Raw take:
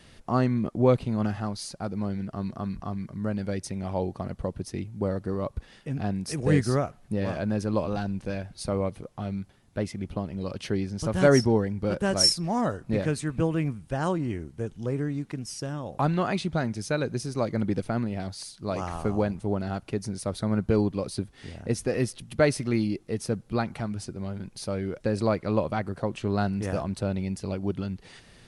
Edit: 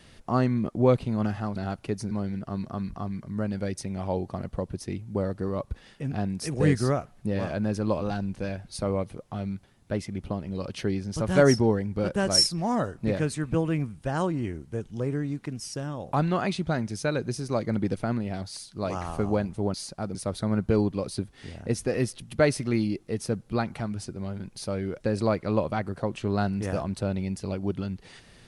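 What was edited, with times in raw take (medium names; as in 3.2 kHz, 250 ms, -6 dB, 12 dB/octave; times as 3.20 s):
1.56–1.97 s: swap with 19.60–20.15 s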